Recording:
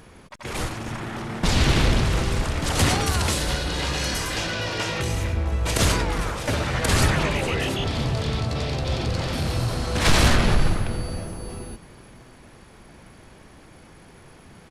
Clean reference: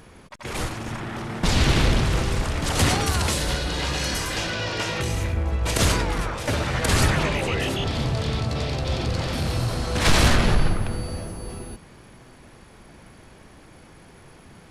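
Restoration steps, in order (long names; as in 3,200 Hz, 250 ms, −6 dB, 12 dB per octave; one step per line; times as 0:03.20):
echo removal 464 ms −18.5 dB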